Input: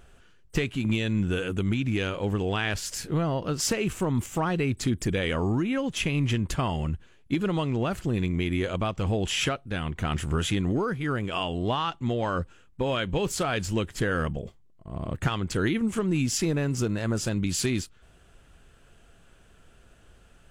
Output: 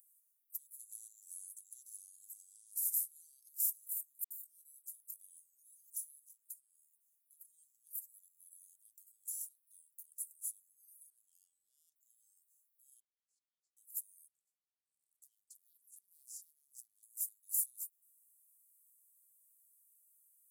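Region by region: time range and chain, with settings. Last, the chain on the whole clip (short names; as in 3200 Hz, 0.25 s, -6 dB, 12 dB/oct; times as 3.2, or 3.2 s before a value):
0.79–3.49 HPF 330 Hz 6 dB/oct + air absorption 62 m + spectral compressor 2:1
4.24–5.55 gate -34 dBFS, range -10 dB + doubler 20 ms -9.5 dB + dispersion highs, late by 66 ms, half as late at 490 Hz
6.28–7.45 HPF 460 Hz + compressor 5:1, threshold -40 dBFS
11.1–11.96 high shelf 6200 Hz -12 dB + overdrive pedal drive 8 dB, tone 3700 Hz, clips at -16 dBFS
13–13.77 level quantiser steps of 21 dB + LPF 3200 Hz 24 dB/oct
14.28–17.03 LPF 4800 Hz + Doppler distortion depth 0.76 ms
whole clip: limiter -21.5 dBFS; inverse Chebyshev high-pass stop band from 2600 Hz, stop band 80 dB; tilt +3 dB/oct; gain +5 dB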